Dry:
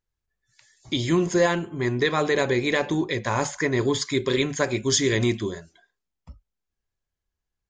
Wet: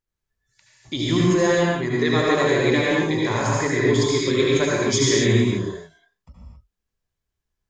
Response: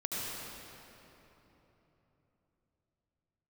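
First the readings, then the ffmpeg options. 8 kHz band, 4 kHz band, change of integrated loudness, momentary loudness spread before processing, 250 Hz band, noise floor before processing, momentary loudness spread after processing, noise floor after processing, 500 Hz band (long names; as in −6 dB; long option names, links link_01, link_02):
+2.5 dB, +3.0 dB, +4.0 dB, 6 LU, +4.5 dB, −85 dBFS, 5 LU, −83 dBFS, +4.0 dB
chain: -filter_complex "[1:a]atrim=start_sample=2205,afade=type=out:start_time=0.33:duration=0.01,atrim=end_sample=14994[link_01];[0:a][link_01]afir=irnorm=-1:irlink=0"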